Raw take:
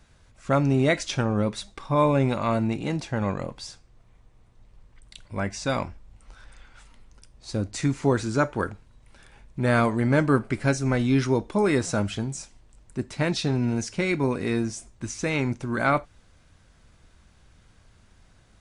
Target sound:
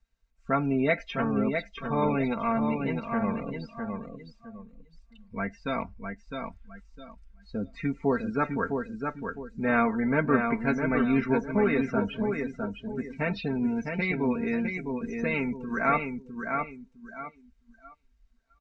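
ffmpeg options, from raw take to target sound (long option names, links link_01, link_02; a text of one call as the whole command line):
ffmpeg -i in.wav -filter_complex "[0:a]lowpass=frequency=7300:width=0.5412,lowpass=frequency=7300:width=1.3066,equalizer=frequency=2200:width_type=o:width=1.8:gain=3.5,aecho=1:1:4.4:0.74,aecho=1:1:657|1314|1971|2628:0.562|0.197|0.0689|0.0241,acrossover=split=3200[link_01][link_02];[link_02]acompressor=threshold=-49dB:ratio=4:attack=1:release=60[link_03];[link_01][link_03]amix=inputs=2:normalize=0,highshelf=frequency=5300:gain=7,bandreject=frequency=3400:width=23,afftdn=noise_reduction=22:noise_floor=-32,volume=-6dB" out.wav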